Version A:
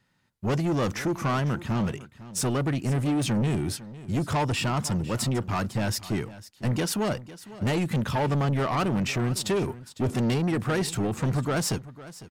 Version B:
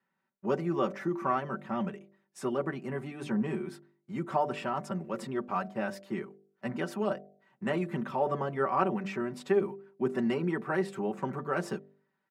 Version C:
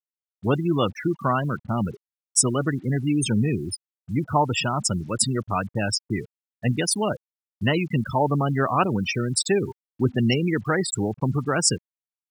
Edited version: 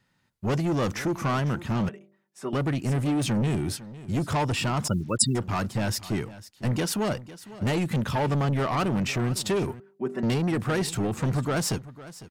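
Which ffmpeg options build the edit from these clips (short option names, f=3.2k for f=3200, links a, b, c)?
-filter_complex "[1:a]asplit=2[a][b];[0:a]asplit=4[c][d][e][f];[c]atrim=end=1.892[g];[a]atrim=start=1.888:end=2.532[h];[d]atrim=start=2.528:end=4.882[i];[2:a]atrim=start=4.878:end=5.352[j];[e]atrim=start=5.348:end=9.802[k];[b]atrim=start=9.798:end=10.232[l];[f]atrim=start=10.228[m];[g][h]acrossfade=d=0.004:c1=hsin:c2=hsin[n];[n][i]acrossfade=d=0.004:c1=hsin:c2=hsin[o];[o][j]acrossfade=d=0.004:c1=hsin:c2=hsin[p];[p][k]acrossfade=d=0.004:c1=hsin:c2=hsin[q];[q][l]acrossfade=d=0.004:c1=hsin:c2=hsin[r];[r][m]acrossfade=d=0.004:c1=hsin:c2=hsin"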